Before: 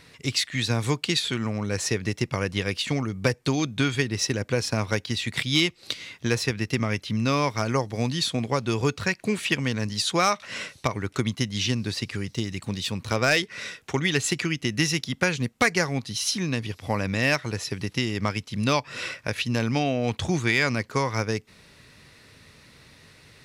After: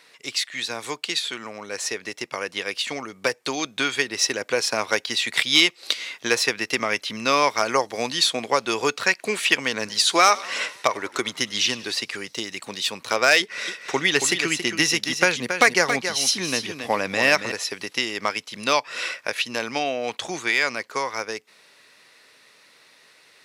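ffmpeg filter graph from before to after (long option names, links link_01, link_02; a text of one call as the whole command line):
ffmpeg -i in.wav -filter_complex "[0:a]asettb=1/sr,asplit=3[link_01][link_02][link_03];[link_01]atrim=end=9.734[link_04];[link_02]atrim=start=9.73:end=11.95,asetpts=PTS-STARTPTS,afade=type=in:duration=0.004:curve=qsin,afade=type=out:start_time=2.216:duration=0.004:curve=qsin,aphaser=in_gain=1:out_gain=1:delay=3.1:decay=0.27:speed=1.1:type=sinusoidal,asplit=6[link_05][link_06][link_07][link_08][link_09][link_10];[link_06]adelay=97,afreqshift=-47,volume=-20dB[link_11];[link_07]adelay=194,afreqshift=-94,volume=-24dB[link_12];[link_08]adelay=291,afreqshift=-141,volume=-28dB[link_13];[link_09]adelay=388,afreqshift=-188,volume=-32dB[link_14];[link_10]adelay=485,afreqshift=-235,volume=-36.1dB[link_15];[link_05][link_11][link_12][link_13][link_14][link_15]amix=inputs=6:normalize=0,atrim=end_sample=97902[link_16];[link_03]atrim=start=11.946[link_17];[link_04][link_16]acrossfade=duration=0.004:curve1=hsin:curve2=qsin[link_18];[link_18][link_17]acrossfade=duration=0.004:curve1=qsin:curve2=hsin,asettb=1/sr,asplit=3[link_19][link_20][link_21];[link_19]atrim=end=13.404[link_22];[link_20]atrim=start=13.4:end=17.52,asetpts=PTS-STARTPTS,afade=type=in:duration=0.004:curve=qsin,afade=type=out:start_time=4.116:duration=0.004:curve=qsin,lowshelf=frequency=330:gain=7,aecho=1:1:276:0.398,atrim=end_sample=181692[link_23];[link_21]atrim=start=17.516[link_24];[link_22][link_23]acrossfade=duration=0.004:curve1=hsin:curve2=qsin[link_25];[link_25][link_24]acrossfade=duration=0.004:curve1=qsin:curve2=hsin,highpass=490,dynaudnorm=framelen=250:gausssize=31:maxgain=11.5dB" out.wav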